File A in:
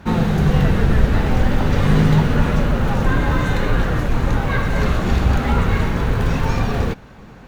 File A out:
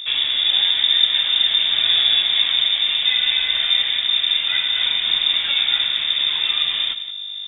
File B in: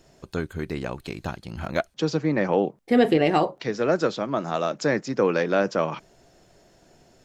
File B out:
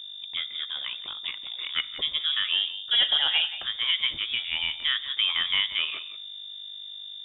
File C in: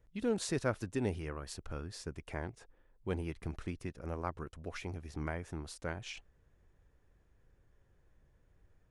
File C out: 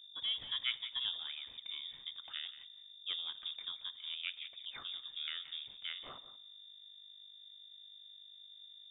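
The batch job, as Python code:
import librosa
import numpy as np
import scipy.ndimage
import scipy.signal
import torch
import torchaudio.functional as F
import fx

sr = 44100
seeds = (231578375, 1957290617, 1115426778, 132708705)

y = fx.rev_double_slope(x, sr, seeds[0], early_s=0.71, late_s=3.1, knee_db=-25, drr_db=16.0)
y = fx.add_hum(y, sr, base_hz=50, snr_db=12)
y = fx.dynamic_eq(y, sr, hz=1500.0, q=1.2, threshold_db=-40.0, ratio=4.0, max_db=4)
y = y + 10.0 ** (-14.0 / 20.0) * np.pad(y, (int(176 * sr / 1000.0), 0))[:len(y)]
y = fx.freq_invert(y, sr, carrier_hz=3600)
y = F.gain(torch.from_numpy(y), -5.0).numpy()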